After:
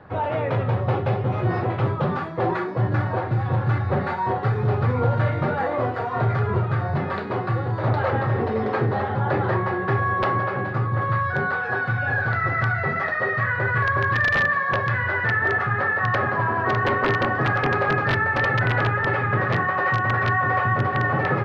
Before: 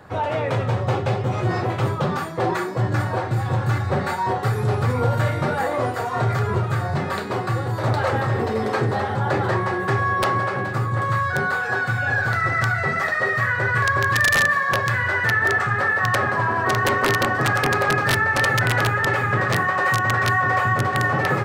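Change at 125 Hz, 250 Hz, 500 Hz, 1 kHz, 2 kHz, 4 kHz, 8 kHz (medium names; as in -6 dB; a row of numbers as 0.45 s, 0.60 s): 0.0 dB, -0.5 dB, -1.0 dB, -1.5 dB, -2.5 dB, -7.5 dB, under -20 dB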